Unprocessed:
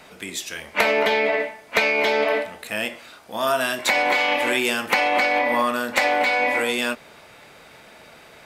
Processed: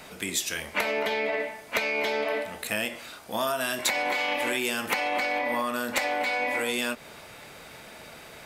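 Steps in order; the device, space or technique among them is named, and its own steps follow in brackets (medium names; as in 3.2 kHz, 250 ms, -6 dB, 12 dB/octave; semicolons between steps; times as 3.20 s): ASMR close-microphone chain (bass shelf 200 Hz +4 dB; compression, threshold -25 dBFS, peak gain reduction 11.5 dB; treble shelf 6.4 kHz +7 dB)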